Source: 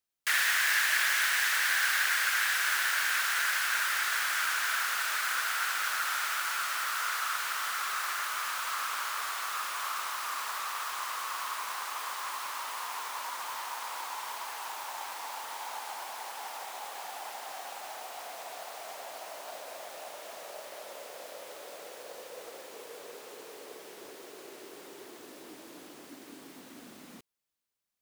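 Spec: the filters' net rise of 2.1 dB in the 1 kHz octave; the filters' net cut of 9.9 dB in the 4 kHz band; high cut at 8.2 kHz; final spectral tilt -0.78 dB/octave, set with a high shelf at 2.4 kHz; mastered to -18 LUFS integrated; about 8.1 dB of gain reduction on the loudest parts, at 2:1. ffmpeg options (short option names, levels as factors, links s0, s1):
-af "lowpass=8200,equalizer=f=1000:t=o:g=5,highshelf=f=2400:g=-7,equalizer=f=4000:t=o:g=-7,acompressor=threshold=0.00794:ratio=2,volume=14.1"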